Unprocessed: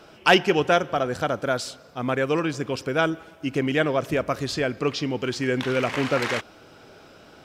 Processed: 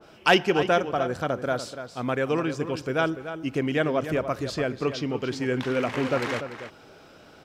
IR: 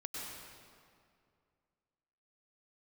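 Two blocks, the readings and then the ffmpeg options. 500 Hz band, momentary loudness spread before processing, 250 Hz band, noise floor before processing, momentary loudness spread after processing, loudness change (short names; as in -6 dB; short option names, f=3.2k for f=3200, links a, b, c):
-1.5 dB, 9 LU, -1.5 dB, -50 dBFS, 10 LU, -2.0 dB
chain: -filter_complex "[0:a]asplit=2[a][b];[b]adelay=291.5,volume=-10dB,highshelf=f=4k:g=-6.56[c];[a][c]amix=inputs=2:normalize=0,adynamicequalizer=threshold=0.0141:dfrequency=1600:dqfactor=0.7:tfrequency=1600:tqfactor=0.7:attack=5:release=100:ratio=0.375:range=2:mode=cutabove:tftype=highshelf,volume=-2dB"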